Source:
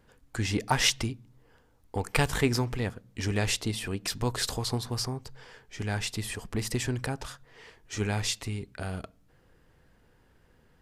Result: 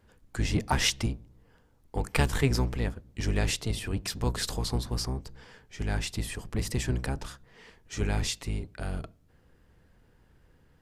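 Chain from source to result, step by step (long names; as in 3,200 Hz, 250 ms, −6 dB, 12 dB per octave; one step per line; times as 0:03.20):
sub-octave generator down 1 octave, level +3 dB
level −2 dB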